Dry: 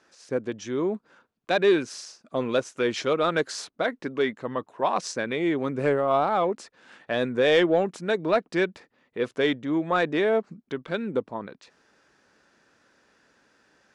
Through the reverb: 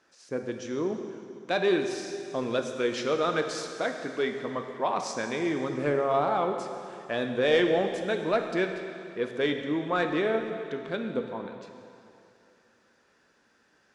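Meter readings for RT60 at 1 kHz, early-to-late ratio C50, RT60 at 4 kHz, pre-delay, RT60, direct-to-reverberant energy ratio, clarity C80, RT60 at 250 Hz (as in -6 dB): 2.5 s, 6.0 dB, 2.5 s, 7 ms, 2.6 s, 4.5 dB, 7.0 dB, 2.4 s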